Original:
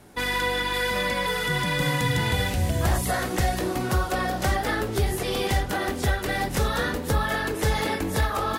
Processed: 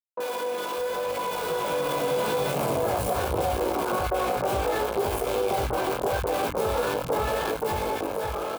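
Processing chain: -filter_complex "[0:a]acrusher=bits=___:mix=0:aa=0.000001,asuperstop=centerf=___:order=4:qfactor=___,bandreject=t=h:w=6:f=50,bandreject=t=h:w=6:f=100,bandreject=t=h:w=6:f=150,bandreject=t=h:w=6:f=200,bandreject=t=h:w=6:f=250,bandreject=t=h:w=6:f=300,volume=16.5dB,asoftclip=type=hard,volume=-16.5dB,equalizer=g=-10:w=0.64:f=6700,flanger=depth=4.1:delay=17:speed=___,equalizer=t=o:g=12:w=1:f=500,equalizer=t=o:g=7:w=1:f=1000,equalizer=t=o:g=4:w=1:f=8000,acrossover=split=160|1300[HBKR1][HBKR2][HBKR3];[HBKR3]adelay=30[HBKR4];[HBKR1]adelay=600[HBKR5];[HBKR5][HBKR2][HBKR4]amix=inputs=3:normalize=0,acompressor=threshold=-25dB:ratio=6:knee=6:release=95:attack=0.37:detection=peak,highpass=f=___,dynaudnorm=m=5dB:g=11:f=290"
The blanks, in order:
3, 1900, 6.7, 0.77, 57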